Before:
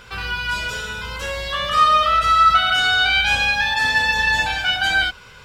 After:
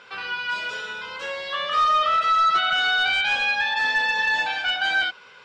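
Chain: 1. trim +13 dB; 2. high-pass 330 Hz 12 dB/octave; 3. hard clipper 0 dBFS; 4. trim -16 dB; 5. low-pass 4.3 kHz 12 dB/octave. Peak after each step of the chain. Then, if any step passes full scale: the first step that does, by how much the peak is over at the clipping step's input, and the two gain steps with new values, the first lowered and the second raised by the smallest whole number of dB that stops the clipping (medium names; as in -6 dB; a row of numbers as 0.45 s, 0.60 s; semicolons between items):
+8.0 dBFS, +8.0 dBFS, 0.0 dBFS, -16.0 dBFS, -15.5 dBFS; step 1, 8.0 dB; step 1 +5 dB, step 4 -8 dB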